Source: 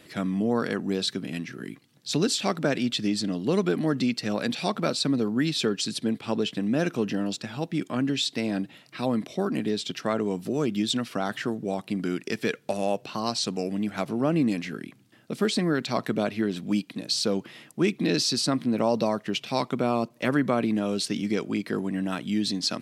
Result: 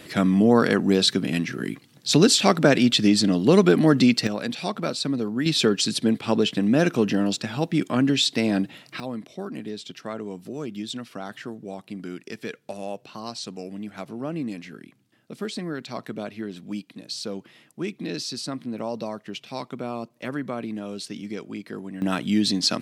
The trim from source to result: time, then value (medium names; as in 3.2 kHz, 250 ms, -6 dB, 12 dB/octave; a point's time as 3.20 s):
+8 dB
from 4.27 s -1 dB
from 5.46 s +5.5 dB
from 9.00 s -6.5 dB
from 22.02 s +5 dB